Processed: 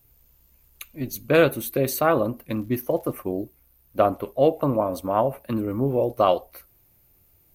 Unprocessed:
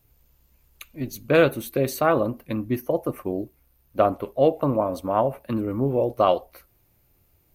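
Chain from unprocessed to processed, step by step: high shelf 8400 Hz +8 dB; 2.47–3.12 crackle 73/s -> 280/s -43 dBFS

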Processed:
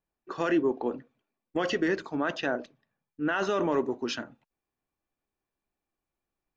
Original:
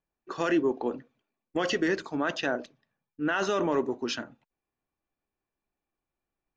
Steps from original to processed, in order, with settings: high shelf 4600 Hz -8 dB, from 3.6 s -3 dB

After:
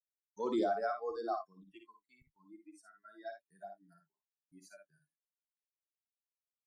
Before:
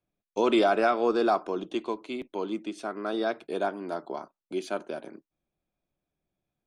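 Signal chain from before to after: per-bin expansion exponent 2; spectral noise reduction 22 dB; gate with hold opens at -60 dBFS; envelope phaser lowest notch 430 Hz, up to 2700 Hz, full sweep at -29.5 dBFS; early reflections 56 ms -6 dB, 76 ms -16 dB; gain -8 dB

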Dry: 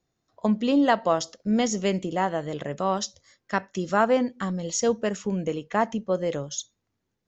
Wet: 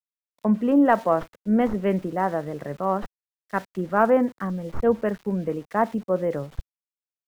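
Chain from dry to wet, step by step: tracing distortion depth 0.056 ms; LPF 1900 Hz 24 dB/oct; in parallel at 0 dB: limiter -18.5 dBFS, peak gain reduction 10.5 dB; on the sum: sample gate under -39.5 dBFS; three-band expander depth 70%; gain -2.5 dB

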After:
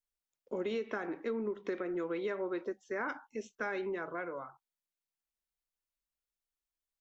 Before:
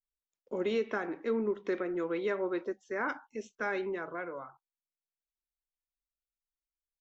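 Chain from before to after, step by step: compressor, threshold -32 dBFS, peak gain reduction 6 dB

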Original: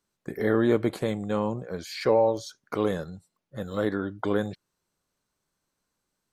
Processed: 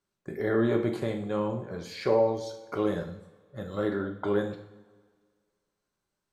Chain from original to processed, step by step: high shelf 6300 Hz -7.5 dB; two-slope reverb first 0.58 s, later 1.8 s, from -16 dB, DRR 3 dB; gain -4 dB

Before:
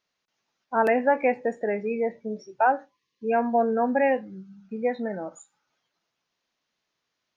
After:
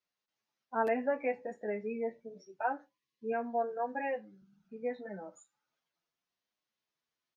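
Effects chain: 3.32–4.42 low shelf 240 Hz -8 dB; endless flanger 8.1 ms +0.8 Hz; gain -8 dB

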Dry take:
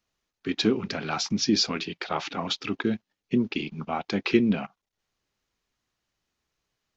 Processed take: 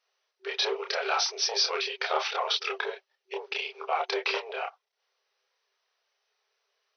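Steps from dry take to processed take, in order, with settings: added harmonics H 4 -16 dB, 5 -8 dB, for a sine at -7.5 dBFS; compressor, threshold -17 dBFS, peak gain reduction 6 dB; chorus voices 6, 0.52 Hz, delay 29 ms, depth 4 ms; FFT band-pass 380–6200 Hz; gain -1.5 dB

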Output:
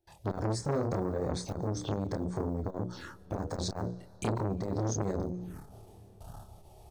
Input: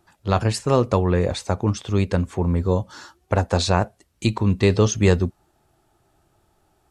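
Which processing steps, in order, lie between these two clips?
block floating point 7-bit; notches 60/120/180/240/300/360/420/480/540 Hz; gate with hold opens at -52 dBFS; low shelf 450 Hz +7 dB; notch 7300 Hz, Q 10; reverse; upward compressor, threshold -34 dBFS; reverse; limiter -9.5 dBFS, peak gain reduction 9 dB; compressor 4:1, threshold -29 dBFS, peak gain reduction 13.5 dB; envelope phaser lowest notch 200 Hz, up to 2800 Hz, full sweep at -30.5 dBFS; doubler 27 ms -3 dB; on a send at -23 dB: reverb RT60 5.5 s, pre-delay 80 ms; on the sum: core saturation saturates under 810 Hz; gain +2 dB

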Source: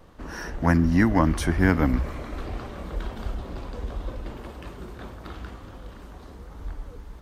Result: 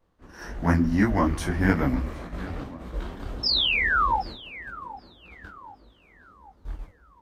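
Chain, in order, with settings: gate -34 dBFS, range -16 dB; painted sound fall, 3.43–4.2, 760–5400 Hz -21 dBFS; tape echo 0.768 s, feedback 56%, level -13.5 dB, low-pass 1800 Hz; detuned doubles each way 59 cents; gain +1.5 dB

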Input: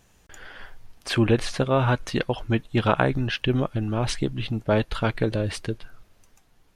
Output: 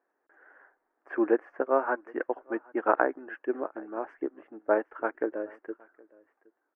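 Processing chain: elliptic band-pass 310–1700 Hz, stop band 40 dB; echo 0.768 s -18 dB; upward expander 1.5:1, over -41 dBFS

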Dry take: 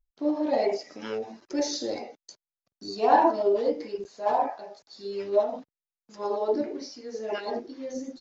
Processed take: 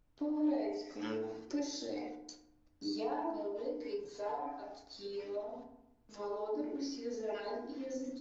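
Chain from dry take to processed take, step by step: 3.84–4.64 comb 6.9 ms, depth 87%; compressor 5:1, threshold -35 dBFS, peak gain reduction 18.5 dB; flange 0.68 Hz, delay 5.7 ms, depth 6.9 ms, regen +69%; added noise brown -72 dBFS; FDN reverb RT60 0.83 s, low-frequency decay 1.35×, high-frequency decay 0.45×, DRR 3 dB

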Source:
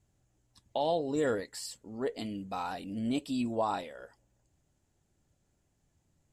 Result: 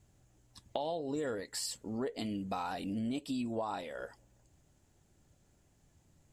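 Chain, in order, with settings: compressor 6:1, threshold -40 dBFS, peak gain reduction 13.5 dB; gain +6 dB

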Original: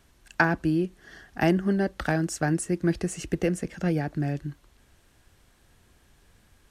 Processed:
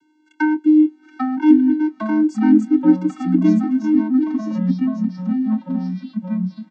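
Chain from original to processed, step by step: vocoder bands 16, square 307 Hz; echoes that change speed 0.718 s, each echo -3 st, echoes 3; doubler 26 ms -14 dB; gain +8.5 dB

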